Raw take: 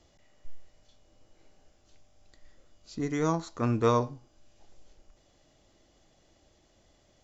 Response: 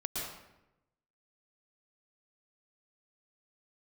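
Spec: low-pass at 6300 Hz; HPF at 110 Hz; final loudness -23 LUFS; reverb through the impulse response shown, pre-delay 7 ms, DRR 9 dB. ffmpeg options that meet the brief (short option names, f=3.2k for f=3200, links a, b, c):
-filter_complex "[0:a]highpass=110,lowpass=6.3k,asplit=2[a][b];[1:a]atrim=start_sample=2205,adelay=7[c];[b][c]afir=irnorm=-1:irlink=0,volume=-12dB[d];[a][d]amix=inputs=2:normalize=0,volume=6.5dB"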